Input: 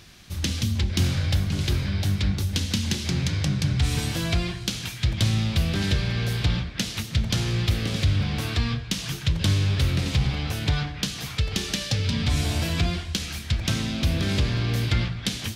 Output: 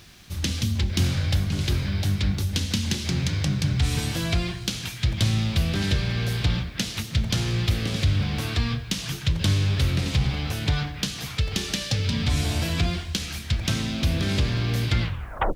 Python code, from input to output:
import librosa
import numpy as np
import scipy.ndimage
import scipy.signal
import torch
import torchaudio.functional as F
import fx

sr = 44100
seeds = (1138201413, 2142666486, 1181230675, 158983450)

y = fx.tape_stop_end(x, sr, length_s=0.55)
y = fx.quant_dither(y, sr, seeds[0], bits=10, dither='none')